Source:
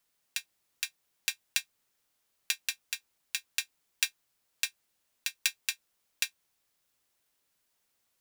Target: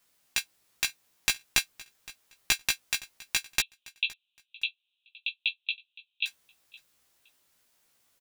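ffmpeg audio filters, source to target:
-filter_complex "[0:a]aeval=exprs='clip(val(0),-1,0.0562)':c=same,asettb=1/sr,asplit=3[a][b][c];[a]atrim=end=3.604[d];[b]atrim=start=3.6:end=6.26,asetpts=PTS-STARTPTS,afade=t=in:d=0.004:c=qsin,afade=t=out:st=2.656:d=0.004:c=qsin,asuperpass=centerf=3100:order=12:qfactor=2.2[e];[c]atrim=start=6.256[f];[d][e]acrossfade=d=0.004:c1=hsin:c2=qsin[g];[g][f]acrossfade=d=0.004:c1=qsin:c2=hsin,asplit=2[h][i];[i]adelay=16,volume=-2.5dB[j];[h][j]amix=inputs=2:normalize=0,aecho=1:1:516|1032:0.0891|0.0196,volume=5.5dB"

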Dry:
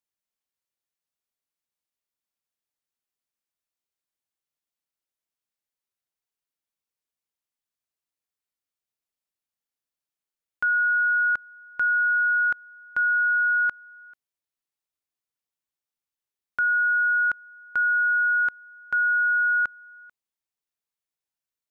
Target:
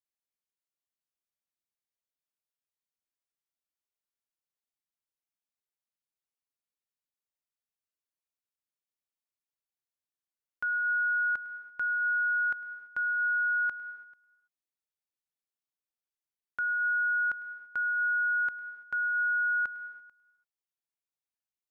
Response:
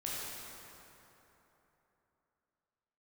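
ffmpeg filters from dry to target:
-filter_complex "[0:a]asplit=2[a][b];[1:a]atrim=start_sample=2205,afade=t=out:st=0.29:d=0.01,atrim=end_sample=13230,adelay=104[c];[b][c]afir=irnorm=-1:irlink=0,volume=-14dB[d];[a][d]amix=inputs=2:normalize=0,volume=-8dB"

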